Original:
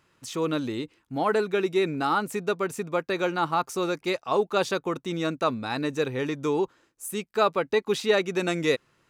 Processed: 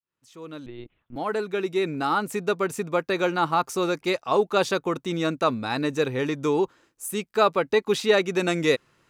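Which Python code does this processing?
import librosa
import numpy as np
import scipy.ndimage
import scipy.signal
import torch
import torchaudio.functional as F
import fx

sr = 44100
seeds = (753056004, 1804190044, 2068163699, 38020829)

y = fx.fade_in_head(x, sr, length_s=2.62)
y = fx.lpc_monotone(y, sr, seeds[0], pitch_hz=120.0, order=10, at=(0.66, 1.16))
y = F.gain(torch.from_numpy(y), 2.5).numpy()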